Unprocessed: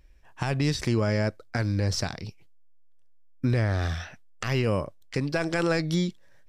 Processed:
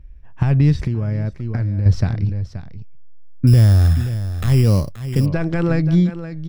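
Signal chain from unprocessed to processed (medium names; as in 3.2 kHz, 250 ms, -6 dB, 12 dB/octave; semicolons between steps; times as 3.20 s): tone controls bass +7 dB, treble -12 dB; on a send: delay 528 ms -12 dB; 0.81–1.86 s: on the sum: compression 5:1, threshold -26 dBFS, peak gain reduction 9.5 dB; bass shelf 230 Hz +10 dB; 3.47–5.26 s: sample-rate reducer 5.2 kHz, jitter 0%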